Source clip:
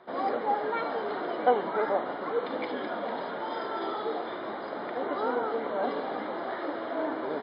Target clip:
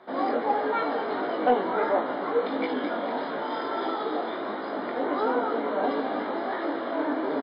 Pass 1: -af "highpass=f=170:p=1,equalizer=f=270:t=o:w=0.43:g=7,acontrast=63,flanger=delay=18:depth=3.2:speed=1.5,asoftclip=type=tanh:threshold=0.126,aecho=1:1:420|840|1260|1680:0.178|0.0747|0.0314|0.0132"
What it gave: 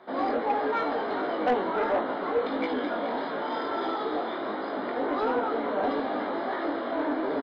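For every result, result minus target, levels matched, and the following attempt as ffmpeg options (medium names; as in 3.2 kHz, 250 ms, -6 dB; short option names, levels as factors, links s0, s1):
echo 192 ms late; saturation: distortion +13 dB
-af "highpass=f=170:p=1,equalizer=f=270:t=o:w=0.43:g=7,acontrast=63,flanger=delay=18:depth=3.2:speed=1.5,asoftclip=type=tanh:threshold=0.126,aecho=1:1:228|456|684|912:0.178|0.0747|0.0314|0.0132"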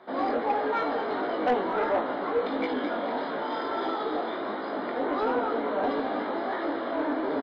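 saturation: distortion +13 dB
-af "highpass=f=170:p=1,equalizer=f=270:t=o:w=0.43:g=7,acontrast=63,flanger=delay=18:depth=3.2:speed=1.5,asoftclip=type=tanh:threshold=0.376,aecho=1:1:228|456|684|912:0.178|0.0747|0.0314|0.0132"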